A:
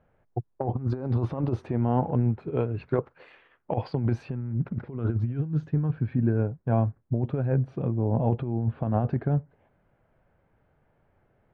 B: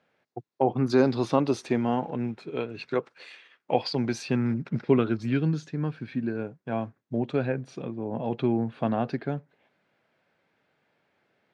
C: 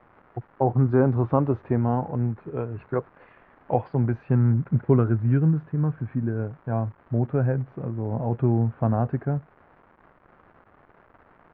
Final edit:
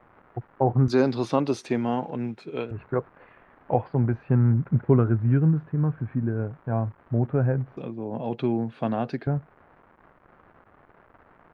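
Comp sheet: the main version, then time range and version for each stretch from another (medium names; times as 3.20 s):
C
0.88–2.71 s: from B
7.77–9.27 s: from B
not used: A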